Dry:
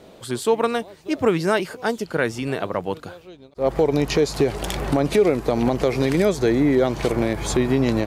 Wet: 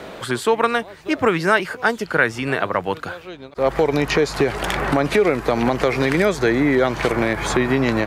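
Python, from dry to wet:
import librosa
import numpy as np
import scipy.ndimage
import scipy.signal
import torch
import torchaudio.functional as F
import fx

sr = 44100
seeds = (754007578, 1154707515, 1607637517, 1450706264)

y = fx.peak_eq(x, sr, hz=1600.0, db=10.5, octaves=1.8)
y = fx.band_squash(y, sr, depth_pct=40)
y = F.gain(torch.from_numpy(y), -1.0).numpy()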